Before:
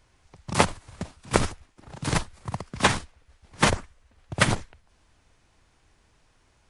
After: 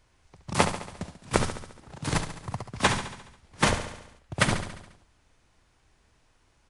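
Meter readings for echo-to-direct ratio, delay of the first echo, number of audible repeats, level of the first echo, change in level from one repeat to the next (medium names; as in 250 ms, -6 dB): -8.0 dB, 70 ms, 6, -10.0 dB, -4.5 dB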